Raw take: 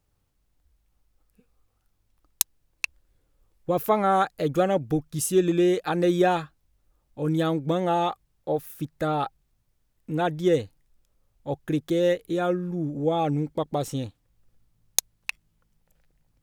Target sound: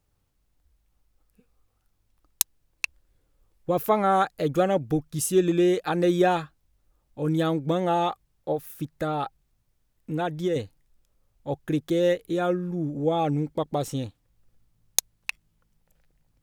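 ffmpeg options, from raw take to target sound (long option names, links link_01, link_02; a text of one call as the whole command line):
ffmpeg -i in.wav -filter_complex "[0:a]asettb=1/sr,asplit=3[link_01][link_02][link_03];[link_01]atrim=end=8.524[link_04];[link_02]atrim=start=8.52:end=10.56,asetpts=PTS-STARTPTS,afade=type=in:duration=0.004:curve=qsin,afade=type=out:start_time=2.036:duration=0.004:curve=qsin,acompressor=threshold=-24dB:ratio=3[link_05];[link_03]atrim=start=10.556[link_06];[link_04][link_05]acrossfade=duration=0.004:curve1=hsin:curve2=qsin[link_07];[link_07][link_06]acrossfade=duration=0.004:curve1=qsin:curve2=hsin" out.wav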